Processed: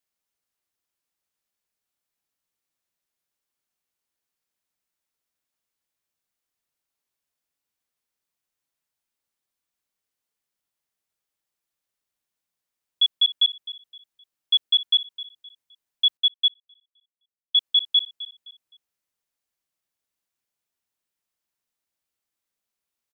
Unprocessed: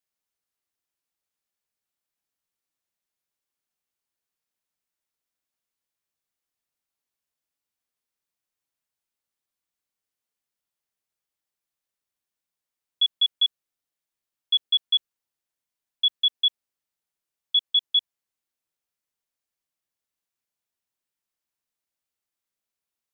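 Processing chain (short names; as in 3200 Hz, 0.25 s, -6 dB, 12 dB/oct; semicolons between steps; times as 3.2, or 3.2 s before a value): feedback echo 0.259 s, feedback 32%, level -16 dB; 16.17–17.55 upward expander 2.5:1, over -31 dBFS; gain +2 dB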